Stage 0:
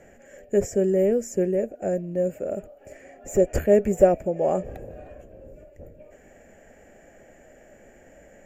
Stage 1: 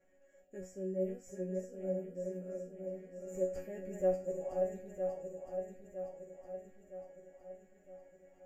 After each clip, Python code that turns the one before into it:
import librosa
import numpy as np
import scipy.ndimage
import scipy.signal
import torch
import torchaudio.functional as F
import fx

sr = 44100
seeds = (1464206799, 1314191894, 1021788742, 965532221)

y = fx.reverse_delay_fb(x, sr, ms=481, feedback_pct=72, wet_db=-4.5)
y = fx.resonator_bank(y, sr, root=54, chord='fifth', decay_s=0.33)
y = y * librosa.db_to_amplitude(-5.5)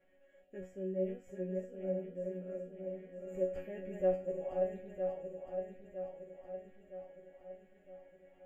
y = fx.high_shelf_res(x, sr, hz=4200.0, db=-9.5, q=3.0)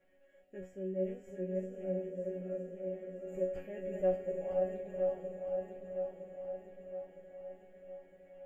y = fx.echo_diffused(x, sr, ms=519, feedback_pct=51, wet_db=-8.0)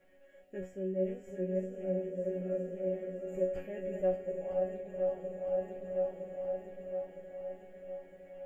y = fx.rider(x, sr, range_db=3, speed_s=0.5)
y = y * librosa.db_to_amplitude(2.5)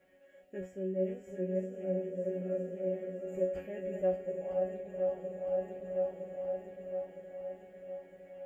y = scipy.signal.sosfilt(scipy.signal.butter(2, 44.0, 'highpass', fs=sr, output='sos'), x)